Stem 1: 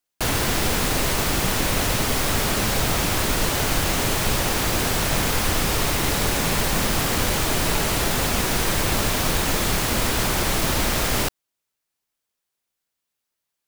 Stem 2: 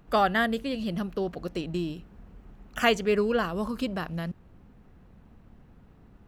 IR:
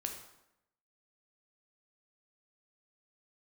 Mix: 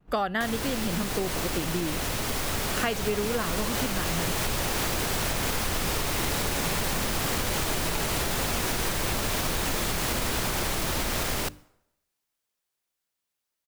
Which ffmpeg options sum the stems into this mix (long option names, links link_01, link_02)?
-filter_complex "[0:a]alimiter=limit=-16dB:level=0:latency=1:release=428,dynaudnorm=framelen=490:gausssize=13:maxgain=7dB,bandreject=frequency=50:width_type=h:width=6,bandreject=frequency=100:width_type=h:width=6,bandreject=frequency=150:width_type=h:width=6,bandreject=frequency=200:width_type=h:width=6,bandreject=frequency=250:width_type=h:width=6,bandreject=frequency=300:width_type=h:width=6,adelay=200,volume=-3dB,asplit=2[link_01][link_02];[link_02]volume=-17.5dB[link_03];[1:a]agate=range=-33dB:threshold=-50dB:ratio=3:detection=peak,volume=3dB[link_04];[2:a]atrim=start_sample=2205[link_05];[link_03][link_05]afir=irnorm=-1:irlink=0[link_06];[link_01][link_04][link_06]amix=inputs=3:normalize=0,acompressor=threshold=-24dB:ratio=6"